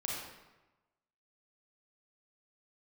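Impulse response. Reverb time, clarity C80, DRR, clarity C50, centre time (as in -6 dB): 1.1 s, 2.0 dB, -4.0 dB, -1.0 dB, 75 ms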